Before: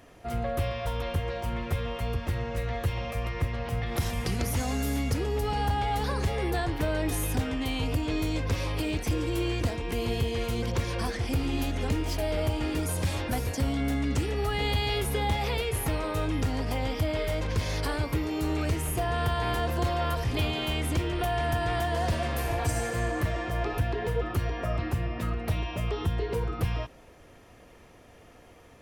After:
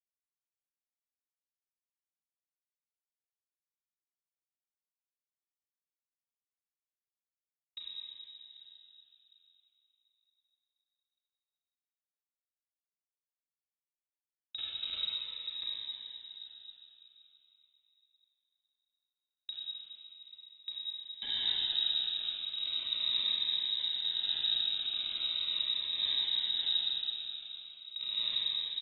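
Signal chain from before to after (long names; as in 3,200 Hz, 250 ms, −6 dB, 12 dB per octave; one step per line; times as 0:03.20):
wind on the microphone 180 Hz −34 dBFS
low shelf with overshoot 210 Hz +11 dB, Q 1.5
hum removal 79.97 Hz, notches 3
in parallel at −1 dB: compressor whose output falls as the input rises −20 dBFS, ratio −0.5
on the sum: band-pass filter sweep 2,400 Hz → 240 Hz, 0:19.63–0:22.71
comparator with hysteresis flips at −23 dBFS
repeating echo 791 ms, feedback 18%, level −17 dB
convolution reverb RT60 3.4 s, pre-delay 26 ms, DRR −7.5 dB
voice inversion scrambler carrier 3,800 Hz
phaser whose notches keep moving one way falling 0.39 Hz
level −7.5 dB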